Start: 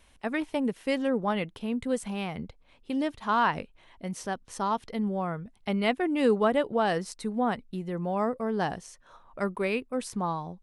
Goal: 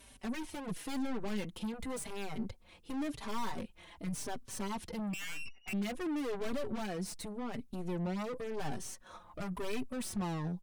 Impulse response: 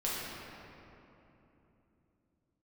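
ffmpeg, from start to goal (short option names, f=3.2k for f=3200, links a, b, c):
-filter_complex "[0:a]asettb=1/sr,asplit=3[a][b][c];[a]atrim=end=5.134[d];[b]atrim=start=5.13:end=5.73,asetpts=PTS-STARTPTS,afade=t=in:d=0.004:c=qsin,afade=t=out:st=0.596:d=0.004:c=qsin,lowpass=f=2.5k:t=q:w=0.5098,lowpass=f=2.5k:t=q:w=0.6013,lowpass=f=2.5k:t=q:w=0.9,lowpass=f=2.5k:t=q:w=2.563,afreqshift=-2900[e];[c]atrim=start=5.726[f];[d][e]acrossfade=d=0.004:c1=hsin:c2=qsin[g];[g][f]acrossfade=d=0.004:c1=qsin:c2=hsin,highpass=f=80:p=1,aemphasis=mode=production:type=cd,asettb=1/sr,asplit=3[h][i][j];[h]atrim=end=6.864[k];[i]atrim=start=6.86:end=7.54,asetpts=PTS-STARTPTS,afade=t=in:d=0.004:c=qsin,afade=t=out:st=0.676:d=0.004:c=qsin,acompressor=threshold=-32dB:ratio=12[l];[j]atrim=start=7.536[m];[k][l]acrossfade=d=0.004:c1=hsin:c2=qsin[n];[n][m]acrossfade=d=0.004:c1=qsin:c2=hsin,aeval=exprs='(tanh(89.1*val(0)+0.55)-tanh(0.55))/89.1':c=same,alimiter=level_in=15.5dB:limit=-24dB:level=0:latency=1:release=28,volume=-15.5dB,lowshelf=f=330:g=7.5,asplit=2[o][p];[p]adelay=4.6,afreqshift=-0.93[q];[o][q]amix=inputs=2:normalize=1,volume=6.5dB"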